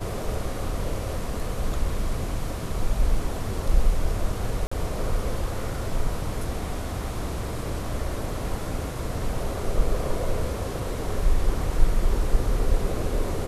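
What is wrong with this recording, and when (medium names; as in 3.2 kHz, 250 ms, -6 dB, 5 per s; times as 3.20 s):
4.67–4.71 s: dropout 45 ms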